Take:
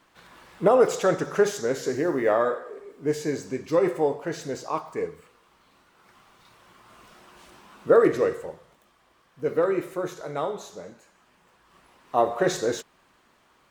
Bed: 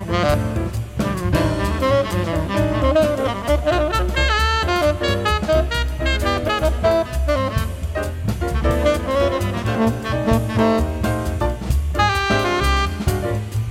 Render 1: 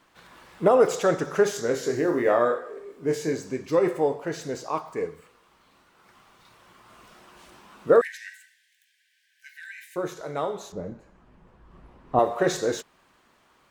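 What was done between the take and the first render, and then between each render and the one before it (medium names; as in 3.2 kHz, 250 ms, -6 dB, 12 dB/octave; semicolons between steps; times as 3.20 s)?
1.53–3.33 s: doubling 25 ms -7 dB; 8.01–9.96 s: brick-wall FIR high-pass 1.5 kHz; 10.72–12.19 s: tilt EQ -4.5 dB/octave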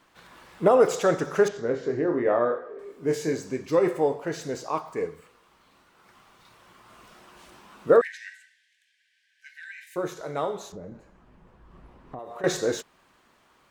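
1.48–2.79 s: tape spacing loss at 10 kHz 28 dB; 7.97–9.87 s: distance through air 55 m; 10.62–12.44 s: compression, threshold -36 dBFS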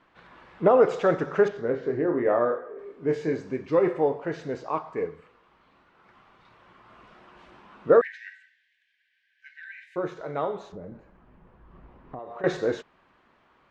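low-pass 2.7 kHz 12 dB/octave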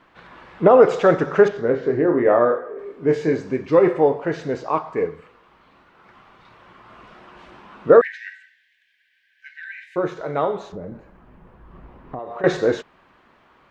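trim +7 dB; peak limiter -2 dBFS, peak gain reduction 2 dB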